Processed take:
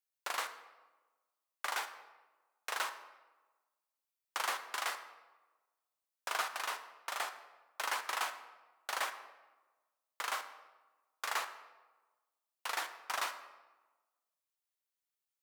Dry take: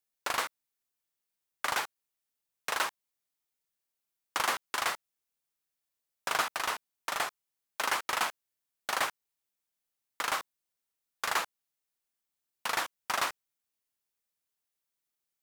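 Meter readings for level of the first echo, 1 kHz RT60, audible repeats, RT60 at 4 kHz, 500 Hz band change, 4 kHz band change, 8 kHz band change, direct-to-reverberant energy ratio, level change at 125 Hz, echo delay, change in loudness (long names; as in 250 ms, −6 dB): no echo audible, 1.2 s, no echo audible, 0.80 s, −7.0 dB, −5.5 dB, −5.5 dB, 9.0 dB, below −20 dB, no echo audible, −5.5 dB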